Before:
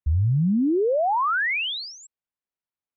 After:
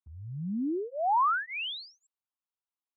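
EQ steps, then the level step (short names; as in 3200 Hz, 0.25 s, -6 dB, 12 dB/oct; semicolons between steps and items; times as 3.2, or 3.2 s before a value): HPF 370 Hz 12 dB/oct; high shelf 2100 Hz -12 dB; fixed phaser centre 1900 Hz, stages 6; +1.0 dB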